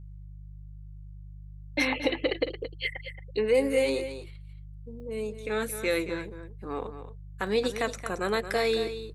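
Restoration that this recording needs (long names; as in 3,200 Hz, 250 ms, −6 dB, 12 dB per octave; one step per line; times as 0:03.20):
hum removal 50.5 Hz, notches 3
repair the gap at 0:05.00/0:07.47, 1.7 ms
echo removal 224 ms −11 dB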